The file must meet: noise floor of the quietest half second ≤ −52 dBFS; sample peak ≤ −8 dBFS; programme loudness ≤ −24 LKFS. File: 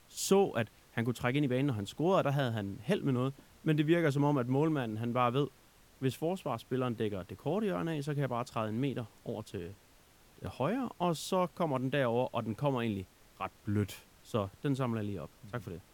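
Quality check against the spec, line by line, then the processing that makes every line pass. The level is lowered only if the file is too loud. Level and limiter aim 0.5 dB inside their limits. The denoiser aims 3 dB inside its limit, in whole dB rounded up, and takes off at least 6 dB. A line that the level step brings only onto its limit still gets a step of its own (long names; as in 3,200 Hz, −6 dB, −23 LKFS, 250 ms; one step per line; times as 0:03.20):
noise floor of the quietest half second −62 dBFS: in spec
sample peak −15.0 dBFS: in spec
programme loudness −33.5 LKFS: in spec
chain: no processing needed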